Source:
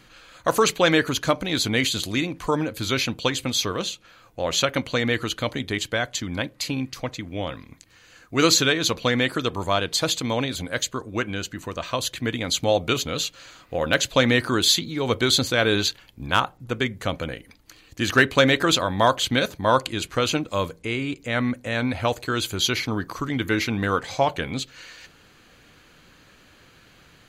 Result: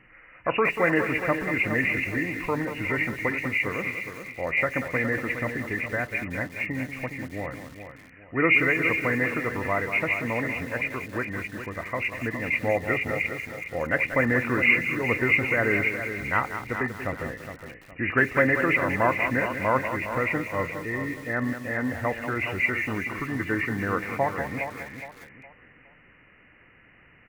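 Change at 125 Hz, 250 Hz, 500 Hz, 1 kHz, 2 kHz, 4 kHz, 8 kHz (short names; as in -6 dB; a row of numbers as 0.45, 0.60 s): -3.5 dB, -3.5 dB, -3.5 dB, -3.5 dB, +2.5 dB, -20.0 dB, under -20 dB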